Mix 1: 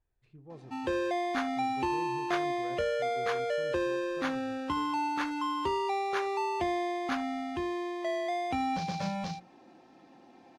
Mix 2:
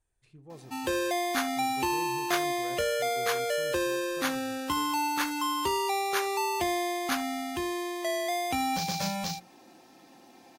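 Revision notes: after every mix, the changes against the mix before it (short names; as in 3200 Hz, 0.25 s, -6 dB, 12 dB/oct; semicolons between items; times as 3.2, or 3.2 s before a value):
master: remove tape spacing loss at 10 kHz 22 dB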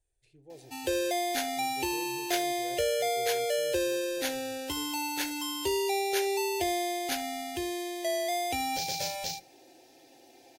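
background: send on; master: add fixed phaser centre 480 Hz, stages 4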